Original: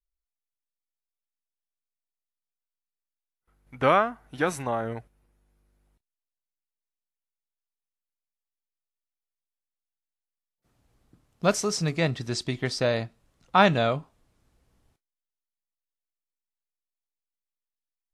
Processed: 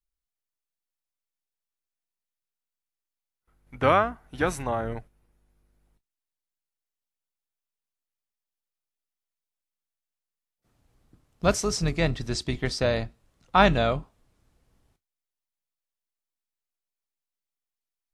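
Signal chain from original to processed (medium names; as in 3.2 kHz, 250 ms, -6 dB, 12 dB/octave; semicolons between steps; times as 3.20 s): octave divider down 2 oct, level -4 dB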